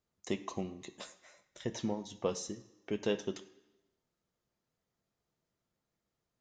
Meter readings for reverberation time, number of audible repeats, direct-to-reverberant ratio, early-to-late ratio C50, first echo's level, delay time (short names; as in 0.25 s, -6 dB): 1.0 s, none, 6.0 dB, 13.5 dB, none, none